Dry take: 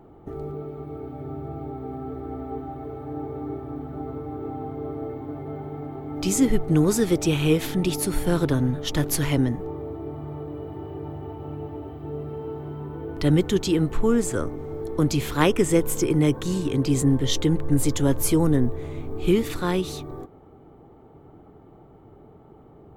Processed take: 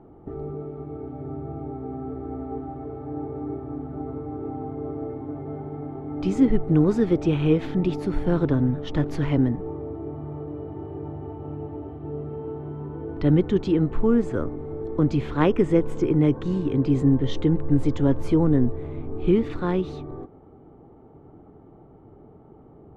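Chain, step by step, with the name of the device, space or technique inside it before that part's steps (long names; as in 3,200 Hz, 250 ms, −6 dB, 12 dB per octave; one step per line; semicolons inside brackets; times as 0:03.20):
phone in a pocket (low-pass filter 3,800 Hz 12 dB per octave; parametric band 250 Hz +2 dB; high-shelf EQ 2,200 Hz −11.5 dB)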